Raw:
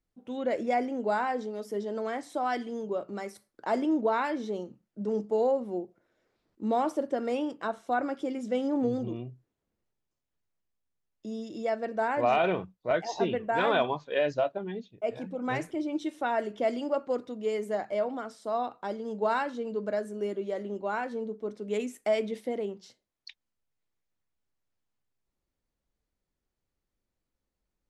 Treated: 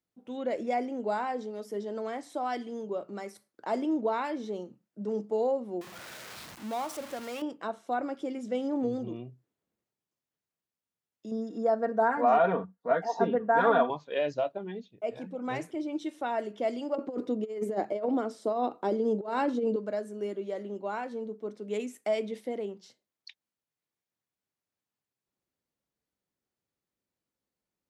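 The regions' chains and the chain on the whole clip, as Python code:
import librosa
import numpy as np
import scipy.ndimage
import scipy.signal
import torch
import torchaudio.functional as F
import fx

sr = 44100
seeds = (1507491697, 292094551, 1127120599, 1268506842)

y = fx.chain(x, sr, fx.zero_step(step_db=-33.5),
    fx.peak_eq(hz=350.0, db=-12.5, octaves=1.7), at=(5.81, 7.42))
y = fx.chain(y, sr, fx.high_shelf_res(hz=2000.0, db=-7.5, q=3.0),
    fx.comb(ms=4.3, depth=1.0), at=(11.31, 13.9))
y = fx.chain(y, sr, fx.peak_eq(hz=340.0, db=11.5, octaves=1.5),
    fx.over_compress(threshold_db=-26.0, ratio=-0.5), at=(16.95, 19.76))
y = scipy.signal.sosfilt(scipy.signal.butter(2, 120.0, 'highpass', fs=sr, output='sos'), y)
y = fx.dynamic_eq(y, sr, hz=1600.0, q=2.0, threshold_db=-44.0, ratio=4.0, max_db=-4)
y = y * 10.0 ** (-2.0 / 20.0)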